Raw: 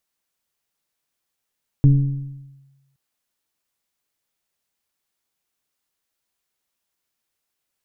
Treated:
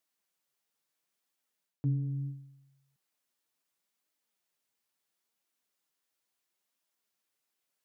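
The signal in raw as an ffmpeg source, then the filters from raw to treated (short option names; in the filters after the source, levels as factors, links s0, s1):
-f lavfi -i "aevalsrc='0.447*pow(10,-3*t/1.13)*sin(2*PI*137*t+0.53*clip(1-t/0.89,0,1)*sin(2*PI*1.08*137*t))':d=1.12:s=44100"
-af "areverse,acompressor=threshold=0.0631:ratio=5,areverse,flanger=delay=2.9:depth=6.1:regen=54:speed=0.73:shape=triangular,highpass=150"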